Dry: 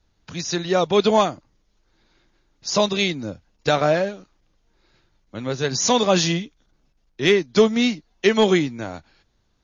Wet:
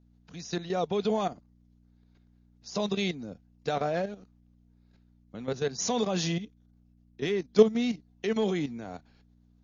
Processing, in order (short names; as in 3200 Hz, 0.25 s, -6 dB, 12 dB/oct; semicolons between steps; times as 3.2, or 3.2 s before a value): level quantiser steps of 12 dB; hum 60 Hz, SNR 27 dB; small resonant body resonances 210/440/710 Hz, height 7 dB, ringing for 30 ms; gain -7.5 dB